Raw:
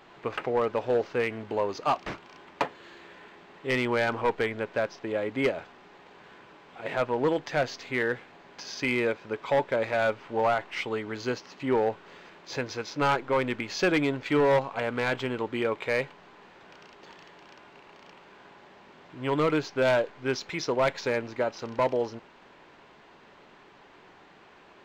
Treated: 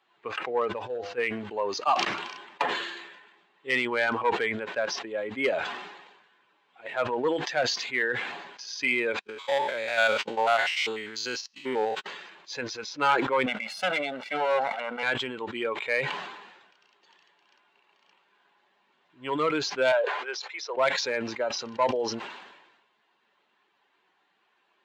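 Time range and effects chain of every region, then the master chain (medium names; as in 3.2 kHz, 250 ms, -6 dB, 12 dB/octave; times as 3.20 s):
0.72–1.18 s: peaking EQ 70 Hz +7.5 dB 2.2 oct + feedback comb 100 Hz, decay 0.63 s
9.19–12.06 s: spectrogram pixelated in time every 100 ms + gate -45 dBFS, range -42 dB + treble shelf 2.3 kHz +12 dB
13.46–15.03 s: comb filter that takes the minimum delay 1.4 ms + high-pass 190 Hz 24 dB/octave + treble shelf 4.2 kHz -9.5 dB
19.92–20.77 s: high-pass 440 Hz 24 dB/octave + treble shelf 3.2 kHz -7.5 dB
whole clip: expander on every frequency bin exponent 1.5; frequency weighting A; decay stretcher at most 50 dB/s; trim +4 dB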